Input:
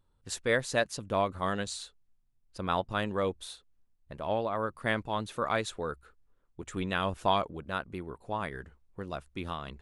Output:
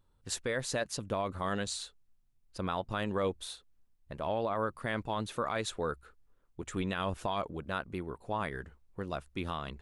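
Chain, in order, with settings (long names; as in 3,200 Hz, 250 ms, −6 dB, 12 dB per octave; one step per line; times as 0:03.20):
brickwall limiter −23.5 dBFS, peak gain reduction 10.5 dB
level +1 dB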